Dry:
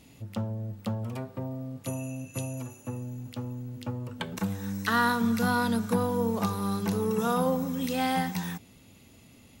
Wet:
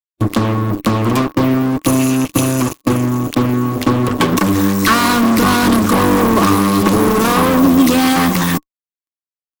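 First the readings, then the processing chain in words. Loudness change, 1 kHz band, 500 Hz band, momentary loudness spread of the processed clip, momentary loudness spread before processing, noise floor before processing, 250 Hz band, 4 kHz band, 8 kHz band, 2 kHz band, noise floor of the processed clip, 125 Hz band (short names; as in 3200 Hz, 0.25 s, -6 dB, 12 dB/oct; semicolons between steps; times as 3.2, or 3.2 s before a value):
+16.5 dB, +15.5 dB, +14.5 dB, 5 LU, 12 LU, -55 dBFS, +17.5 dB, +18.0 dB, +19.5 dB, +14.5 dB, under -85 dBFS, +15.0 dB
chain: fuzz box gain 41 dB, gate -43 dBFS; small resonant body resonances 300/1100 Hz, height 15 dB, ringing for 55 ms; harmonic-percussive split percussive +6 dB; gain -2.5 dB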